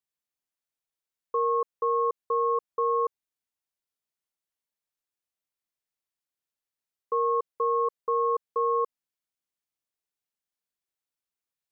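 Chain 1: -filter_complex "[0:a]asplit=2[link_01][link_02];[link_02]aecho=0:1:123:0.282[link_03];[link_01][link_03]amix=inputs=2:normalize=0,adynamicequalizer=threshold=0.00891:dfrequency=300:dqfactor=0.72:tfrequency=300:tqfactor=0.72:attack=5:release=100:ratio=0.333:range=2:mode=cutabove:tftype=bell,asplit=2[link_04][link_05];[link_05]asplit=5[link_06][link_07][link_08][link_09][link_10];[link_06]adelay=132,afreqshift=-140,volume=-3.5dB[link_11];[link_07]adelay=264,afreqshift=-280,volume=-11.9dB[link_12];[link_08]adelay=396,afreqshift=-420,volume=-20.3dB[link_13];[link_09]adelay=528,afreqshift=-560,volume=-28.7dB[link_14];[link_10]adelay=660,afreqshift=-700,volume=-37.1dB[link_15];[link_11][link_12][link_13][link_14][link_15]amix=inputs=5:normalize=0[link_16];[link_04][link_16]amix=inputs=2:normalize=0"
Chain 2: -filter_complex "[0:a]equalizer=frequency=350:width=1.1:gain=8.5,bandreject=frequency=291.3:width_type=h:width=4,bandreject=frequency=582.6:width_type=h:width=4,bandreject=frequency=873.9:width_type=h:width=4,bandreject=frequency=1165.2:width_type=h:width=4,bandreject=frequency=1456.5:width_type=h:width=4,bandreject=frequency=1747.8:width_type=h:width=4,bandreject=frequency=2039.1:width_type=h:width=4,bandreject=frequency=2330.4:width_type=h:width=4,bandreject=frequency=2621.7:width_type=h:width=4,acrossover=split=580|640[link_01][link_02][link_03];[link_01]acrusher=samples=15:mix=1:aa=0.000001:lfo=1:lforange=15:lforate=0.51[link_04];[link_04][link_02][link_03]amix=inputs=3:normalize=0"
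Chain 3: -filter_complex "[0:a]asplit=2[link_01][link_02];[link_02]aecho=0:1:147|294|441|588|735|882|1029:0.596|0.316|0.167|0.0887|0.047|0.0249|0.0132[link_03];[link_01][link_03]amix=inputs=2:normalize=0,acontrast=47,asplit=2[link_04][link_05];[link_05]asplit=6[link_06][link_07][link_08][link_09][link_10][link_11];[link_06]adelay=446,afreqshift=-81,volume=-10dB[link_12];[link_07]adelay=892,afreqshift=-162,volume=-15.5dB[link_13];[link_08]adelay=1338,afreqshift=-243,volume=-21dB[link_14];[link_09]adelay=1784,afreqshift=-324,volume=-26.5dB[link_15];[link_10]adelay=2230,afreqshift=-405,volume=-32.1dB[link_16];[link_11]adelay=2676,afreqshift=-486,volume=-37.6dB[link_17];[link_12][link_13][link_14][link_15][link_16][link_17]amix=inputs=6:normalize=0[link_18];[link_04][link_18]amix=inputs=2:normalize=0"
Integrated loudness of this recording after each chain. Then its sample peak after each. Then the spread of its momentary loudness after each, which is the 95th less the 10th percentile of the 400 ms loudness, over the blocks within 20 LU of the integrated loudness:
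−26.0, −24.0, −21.5 LKFS; −15.0, −15.0, −10.5 dBFS; 8, 3, 18 LU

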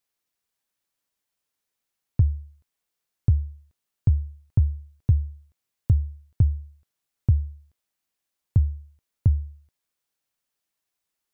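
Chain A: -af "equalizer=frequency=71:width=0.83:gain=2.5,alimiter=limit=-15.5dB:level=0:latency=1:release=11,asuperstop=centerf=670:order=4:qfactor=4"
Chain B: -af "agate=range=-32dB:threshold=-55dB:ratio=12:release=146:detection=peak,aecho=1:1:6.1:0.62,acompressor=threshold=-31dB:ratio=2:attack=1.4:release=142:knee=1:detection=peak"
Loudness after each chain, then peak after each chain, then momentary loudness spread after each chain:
−28.0, −38.5 LKFS; −15.0, −19.5 dBFS; 12, 11 LU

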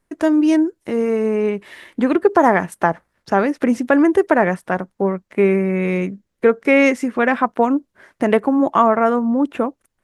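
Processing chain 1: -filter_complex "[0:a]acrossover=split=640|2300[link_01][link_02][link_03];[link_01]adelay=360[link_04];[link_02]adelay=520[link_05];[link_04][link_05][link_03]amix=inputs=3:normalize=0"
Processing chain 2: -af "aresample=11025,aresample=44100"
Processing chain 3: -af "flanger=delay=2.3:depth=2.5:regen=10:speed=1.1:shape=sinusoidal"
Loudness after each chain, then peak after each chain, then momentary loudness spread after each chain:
−19.0, −17.5, −21.0 LKFS; −3.0, −1.0, −3.0 dBFS; 8, 9, 8 LU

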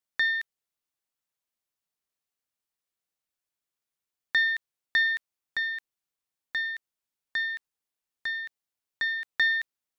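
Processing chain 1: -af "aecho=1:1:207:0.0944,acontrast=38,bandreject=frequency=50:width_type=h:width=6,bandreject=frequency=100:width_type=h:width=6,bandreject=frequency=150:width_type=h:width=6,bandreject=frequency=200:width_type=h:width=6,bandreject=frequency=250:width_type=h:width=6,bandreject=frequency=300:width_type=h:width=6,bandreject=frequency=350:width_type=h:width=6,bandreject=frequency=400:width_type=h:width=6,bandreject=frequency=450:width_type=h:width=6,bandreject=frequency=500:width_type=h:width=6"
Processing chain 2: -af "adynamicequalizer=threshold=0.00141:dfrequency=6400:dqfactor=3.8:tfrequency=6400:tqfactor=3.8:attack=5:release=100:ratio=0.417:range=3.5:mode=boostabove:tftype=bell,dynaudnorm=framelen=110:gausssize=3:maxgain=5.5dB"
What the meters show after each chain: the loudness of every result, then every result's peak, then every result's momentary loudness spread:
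−23.0, −23.0 LKFS; −10.5, −10.0 dBFS; 12, 12 LU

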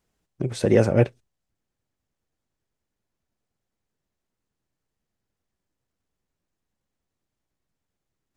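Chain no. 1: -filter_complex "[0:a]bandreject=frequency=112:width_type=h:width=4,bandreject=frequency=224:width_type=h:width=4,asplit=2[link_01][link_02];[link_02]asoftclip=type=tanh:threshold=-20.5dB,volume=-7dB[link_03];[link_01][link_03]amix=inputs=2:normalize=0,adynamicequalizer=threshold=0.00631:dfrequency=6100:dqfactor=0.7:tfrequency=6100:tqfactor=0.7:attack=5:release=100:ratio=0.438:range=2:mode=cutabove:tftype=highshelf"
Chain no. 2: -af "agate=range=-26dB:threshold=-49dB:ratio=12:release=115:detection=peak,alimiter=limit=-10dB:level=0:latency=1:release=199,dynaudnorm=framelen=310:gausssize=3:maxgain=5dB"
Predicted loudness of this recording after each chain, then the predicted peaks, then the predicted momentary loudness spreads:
−20.5, −20.5 LKFS; −4.0, −5.5 dBFS; 12, 11 LU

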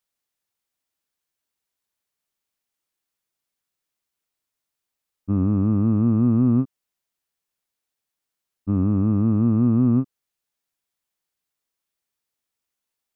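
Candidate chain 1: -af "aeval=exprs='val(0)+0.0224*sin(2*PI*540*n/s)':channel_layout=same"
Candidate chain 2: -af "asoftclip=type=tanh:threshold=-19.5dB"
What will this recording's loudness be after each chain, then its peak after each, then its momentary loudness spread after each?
−20.5, −25.0 LKFS; −9.5, −19.5 dBFS; 18, 9 LU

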